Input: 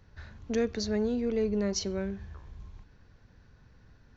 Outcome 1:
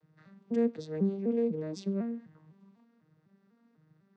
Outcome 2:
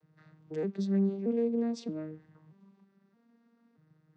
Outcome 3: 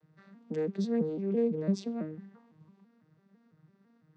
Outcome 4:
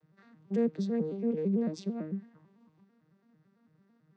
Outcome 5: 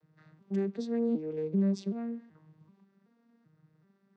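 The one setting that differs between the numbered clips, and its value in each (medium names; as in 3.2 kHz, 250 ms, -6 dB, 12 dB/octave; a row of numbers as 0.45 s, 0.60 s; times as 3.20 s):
vocoder on a broken chord, a note every: 250 ms, 626 ms, 167 ms, 111 ms, 382 ms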